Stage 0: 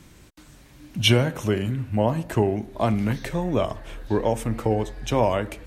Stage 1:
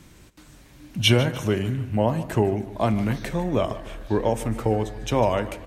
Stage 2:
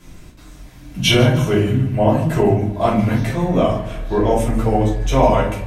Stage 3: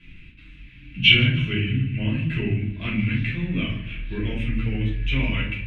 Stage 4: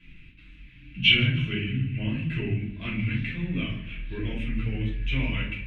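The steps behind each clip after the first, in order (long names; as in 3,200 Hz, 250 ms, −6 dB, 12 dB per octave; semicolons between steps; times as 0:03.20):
repeating echo 150 ms, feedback 45%, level −15.5 dB
rectangular room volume 280 cubic metres, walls furnished, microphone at 5.3 metres; level −3 dB
drawn EQ curve 120 Hz 0 dB, 280 Hz −3 dB, 760 Hz −27 dB, 2,600 Hz +14 dB, 5,700 Hz −22 dB, 12,000 Hz −28 dB; level −5 dB
flanger 1.8 Hz, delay 3.7 ms, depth 4 ms, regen −60%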